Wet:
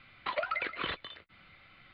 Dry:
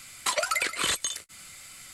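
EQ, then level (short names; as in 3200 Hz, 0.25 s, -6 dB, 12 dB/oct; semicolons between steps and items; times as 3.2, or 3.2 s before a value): steep low-pass 4200 Hz 48 dB/oct; air absorption 320 m; -3.0 dB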